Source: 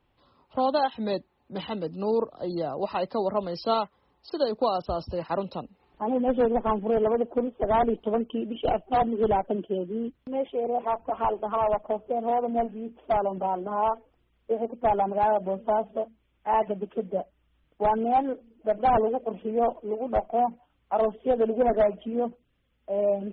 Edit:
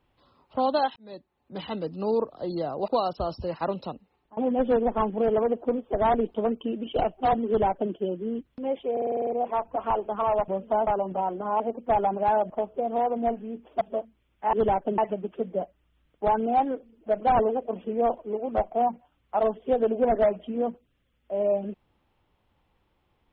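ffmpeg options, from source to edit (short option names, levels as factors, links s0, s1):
-filter_complex "[0:a]asplit=18[s0][s1][s2][s3][s4][s5][s6][s7][s8][s9][s10][s11][s12][s13][s14][s15][s16][s17];[s0]atrim=end=0.96,asetpts=PTS-STARTPTS,afade=t=out:st=0.956:d=0.004:c=hsin[s18];[s1]atrim=start=0.96:end=2.882,asetpts=PTS-STARTPTS,afade=t=in:d=0.79[s19];[s2]atrim=start=4.568:end=6.06,asetpts=PTS-STARTPTS,afade=t=out:st=0.982:d=0.51:silence=0.0668344[s20];[s3]atrim=start=6.06:end=10.662,asetpts=PTS-STARTPTS,afade=t=in:d=0.004:c=hsin:silence=0.0668344[s21];[s4]atrim=start=10.608:end=10.662[s22];[s5]atrim=start=10.608:end=10.662[s23];[s6]atrim=start=10.608:end=10.662[s24];[s7]atrim=start=10.608:end=10.662[s25];[s8]atrim=start=10.608:end=10.662[s26];[s9]atrim=start=10.608:end=10.662[s27];[s10]atrim=start=10.608:end=11.822[s28];[s11]atrim=start=15.448:end=15.842[s29];[s12]atrim=start=13.128:end=13.862[s30];[s13]atrim=start=14.548:end=15.452[s31];[s14]atrim=start=11.818:end=13.132[s32];[s15]atrim=start=15.838:end=16.562[s33];[s16]atrim=start=9.158:end=9.612[s34];[s17]atrim=start=16.558[s35];[s18][s19]concat=n=2:v=0:a=1[s36];[s20][s21]concat=n=2:v=0:a=1[s37];[s36][s37]acrossfade=d=0.004:c1=hsin:c2=hsin[s38];[s38][s22]acrossfade=d=0.004:c1=hsin:c2=hsin[s39];[s39][s23]acrossfade=d=0.004:c1=hsin:c2=hsin[s40];[s40][s24]acrossfade=d=0.004:c1=hsin:c2=hsin[s41];[s41][s25]acrossfade=d=0.004:c1=hsin:c2=hsin[s42];[s42][s26]acrossfade=d=0.004:c1=hsin:c2=hsin[s43];[s43][s27]acrossfade=d=0.004:c1=hsin:c2=hsin[s44];[s44][s28]acrossfade=d=0.004:c1=hsin:c2=hsin[s45];[s45][s29]acrossfade=d=0.004:c1=hsin:c2=hsin[s46];[s46][s30]acrossfade=d=0.004:c1=hsin:c2=hsin[s47];[s47][s31]acrossfade=d=0.004:c1=hsin:c2=hsin[s48];[s48][s32]acrossfade=d=0.004:c1=hsin:c2=hsin[s49];[s49][s33]acrossfade=d=0.004:c1=hsin:c2=hsin[s50];[s50][s34]acrossfade=d=0.004:c1=hsin:c2=hsin[s51];[s51][s35]acrossfade=d=0.004:c1=hsin:c2=hsin"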